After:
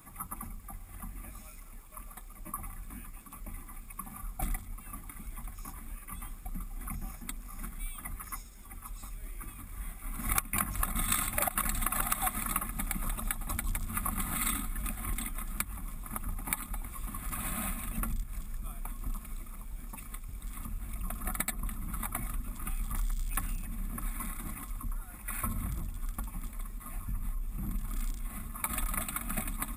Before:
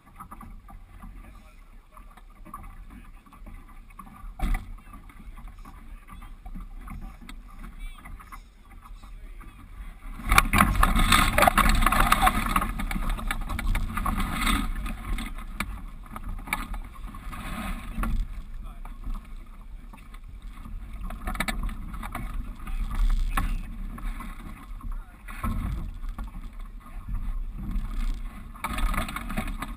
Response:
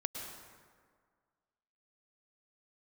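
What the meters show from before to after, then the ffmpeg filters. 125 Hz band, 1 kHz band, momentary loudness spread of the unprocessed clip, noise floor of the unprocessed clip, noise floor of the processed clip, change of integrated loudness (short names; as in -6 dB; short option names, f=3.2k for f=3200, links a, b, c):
-7.0 dB, -12.0 dB, 25 LU, -49 dBFS, -48 dBFS, -9.0 dB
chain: -af "aexciter=amount=6.2:drive=2.5:freq=5.8k,acompressor=threshold=-32dB:ratio=3"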